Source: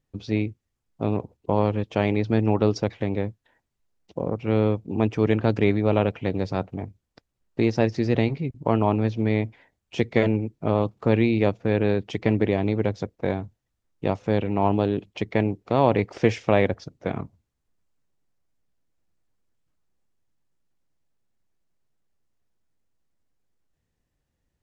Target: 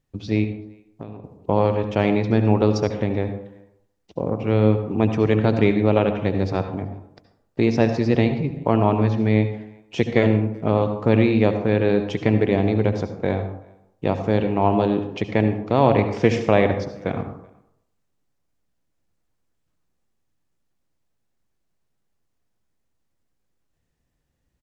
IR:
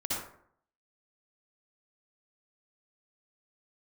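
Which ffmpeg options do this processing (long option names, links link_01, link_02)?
-filter_complex "[0:a]asettb=1/sr,asplit=3[link_01][link_02][link_03];[link_01]atrim=end=0.444[link_04];[link_02]atrim=start=0.44:end=1.24,asetpts=PTS-STARTPTS,afade=type=in:duration=0.004:curve=qsin,afade=type=out:start_time=0.796:duration=0.004:curve=qsin,acompressor=threshold=-35dB:ratio=16[link_05];[link_03]atrim=start=1.236[link_06];[link_04][link_05]acrossfade=duration=0.004:curve1=hsin:curve2=qsin[link_07];[link_07][link_06]acrossfade=duration=0.004:curve1=qsin:curve2=hsin,asplit=2[link_08][link_09];[link_09]adelay=380,highpass=300,lowpass=3400,asoftclip=type=hard:threshold=-13dB,volume=-28dB[link_10];[link_08][link_10]amix=inputs=2:normalize=0,asplit=2[link_11][link_12];[1:a]atrim=start_sample=2205,asetrate=37485,aresample=44100[link_13];[link_12][link_13]afir=irnorm=-1:irlink=0,volume=-12.5dB[link_14];[link_11][link_14]amix=inputs=2:normalize=0,volume=1dB"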